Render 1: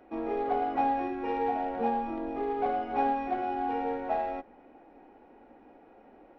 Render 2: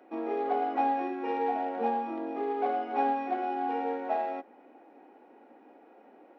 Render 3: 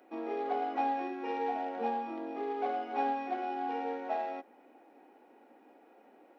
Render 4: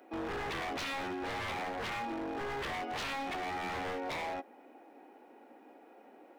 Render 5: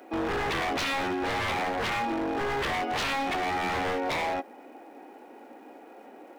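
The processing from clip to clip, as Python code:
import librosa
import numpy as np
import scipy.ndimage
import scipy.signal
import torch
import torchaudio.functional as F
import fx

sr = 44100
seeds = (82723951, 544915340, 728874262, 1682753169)

y1 = scipy.signal.sosfilt(scipy.signal.butter(4, 230.0, 'highpass', fs=sr, output='sos'), x)
y2 = fx.high_shelf(y1, sr, hz=3500.0, db=10.0)
y2 = y2 * 10.0 ** (-4.5 / 20.0)
y3 = 10.0 ** (-35.5 / 20.0) * (np.abs((y2 / 10.0 ** (-35.5 / 20.0) + 3.0) % 4.0 - 2.0) - 1.0)
y3 = y3 * 10.0 ** (3.0 / 20.0)
y4 = fx.dmg_crackle(y3, sr, seeds[0], per_s=600.0, level_db=-68.0)
y4 = y4 * 10.0 ** (8.5 / 20.0)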